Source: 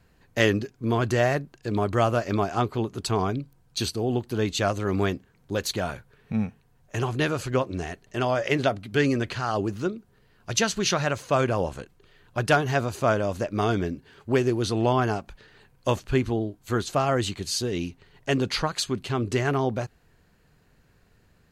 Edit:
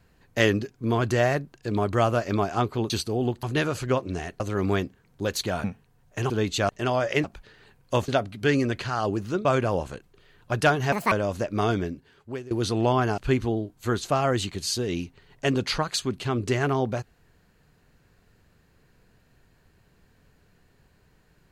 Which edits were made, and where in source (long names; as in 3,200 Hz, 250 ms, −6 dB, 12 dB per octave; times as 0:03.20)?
0:02.90–0:03.78: remove
0:04.31–0:04.70: swap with 0:07.07–0:08.04
0:05.94–0:06.41: remove
0:09.96–0:11.31: remove
0:12.78–0:13.12: play speed 172%
0:13.70–0:14.51: fade out, to −21.5 dB
0:15.18–0:16.02: move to 0:08.59